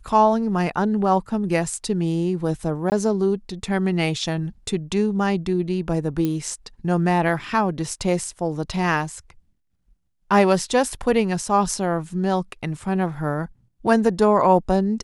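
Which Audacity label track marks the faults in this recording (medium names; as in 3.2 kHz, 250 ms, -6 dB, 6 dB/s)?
2.900000	2.920000	dropout 19 ms
6.250000	6.250000	pop -12 dBFS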